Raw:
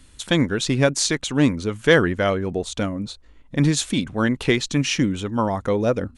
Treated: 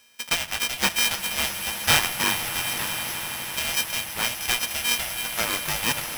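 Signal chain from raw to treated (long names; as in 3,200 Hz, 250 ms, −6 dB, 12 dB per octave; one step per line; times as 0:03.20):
samples sorted by size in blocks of 16 samples
high-pass filter 980 Hz 12 dB per octave
echo that builds up and dies away 83 ms, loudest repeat 8, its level −16 dB
on a send at −16 dB: convolution reverb RT60 3.0 s, pre-delay 5 ms
on the sum: ring modulator with a square carrier 360 Hz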